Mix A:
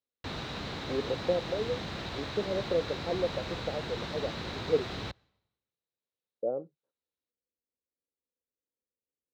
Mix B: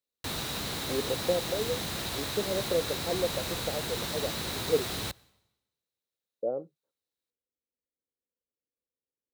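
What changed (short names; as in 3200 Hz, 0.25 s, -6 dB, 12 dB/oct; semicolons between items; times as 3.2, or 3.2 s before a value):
background: send +6.0 dB; master: remove air absorption 190 m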